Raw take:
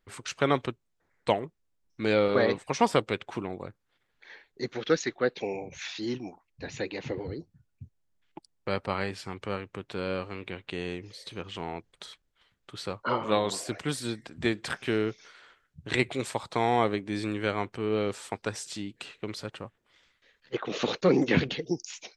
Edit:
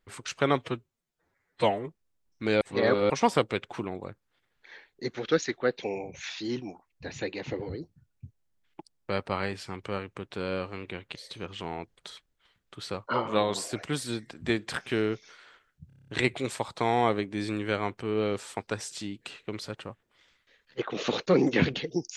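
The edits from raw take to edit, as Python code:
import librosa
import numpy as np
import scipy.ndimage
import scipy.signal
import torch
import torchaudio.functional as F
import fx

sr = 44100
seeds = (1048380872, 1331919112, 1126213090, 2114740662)

y = fx.edit(x, sr, fx.stretch_span(start_s=0.61, length_s=0.84, factor=1.5),
    fx.reverse_span(start_s=2.19, length_s=0.49),
    fx.cut(start_s=10.73, length_s=0.38),
    fx.stutter(start_s=15.83, slice_s=0.03, count=8), tone=tone)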